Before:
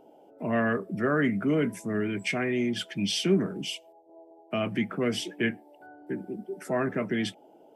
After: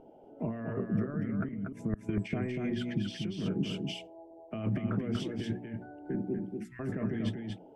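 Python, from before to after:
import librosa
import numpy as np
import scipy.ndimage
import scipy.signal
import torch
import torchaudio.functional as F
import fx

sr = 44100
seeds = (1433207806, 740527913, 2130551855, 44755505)

y = fx.cheby2_bandstop(x, sr, low_hz=250.0, high_hz=690.0, order=4, stop_db=70, at=(6.39, 6.79), fade=0.02)
y = fx.hum_notches(y, sr, base_hz=60, count=7)
y = fx.gate_flip(y, sr, shuts_db=-21.0, range_db=-30, at=(1.48, 2.09))
y = fx.over_compress(y, sr, threshold_db=-33.0, ratio=-1.0)
y = fx.riaa(y, sr, side='playback')
y = y + 10.0 ** (-4.5 / 20.0) * np.pad(y, (int(239 * sr / 1000.0), 0))[:len(y)]
y = fx.sustainer(y, sr, db_per_s=84.0, at=(3.75, 4.78))
y = y * 10.0 ** (-7.0 / 20.0)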